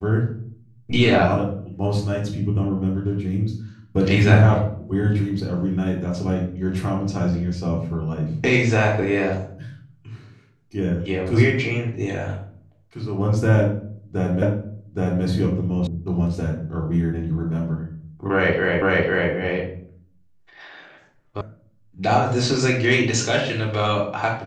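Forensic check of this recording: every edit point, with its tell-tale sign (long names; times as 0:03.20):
0:14.42: the same again, the last 0.82 s
0:15.87: cut off before it has died away
0:18.82: the same again, the last 0.5 s
0:21.41: cut off before it has died away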